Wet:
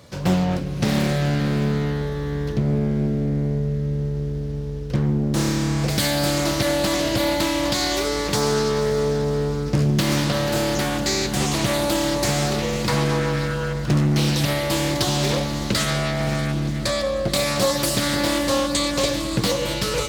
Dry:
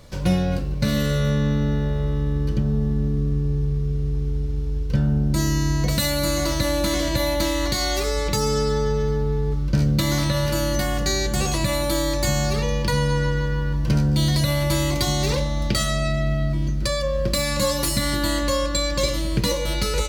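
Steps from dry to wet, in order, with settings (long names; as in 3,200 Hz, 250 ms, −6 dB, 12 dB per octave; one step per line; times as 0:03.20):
high-pass filter 100 Hz 12 dB per octave
feedback delay with all-pass diffusion 544 ms, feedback 49%, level −11 dB
convolution reverb RT60 1.4 s, pre-delay 98 ms, DRR 15.5 dB
highs frequency-modulated by the lows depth 0.72 ms
level +1.5 dB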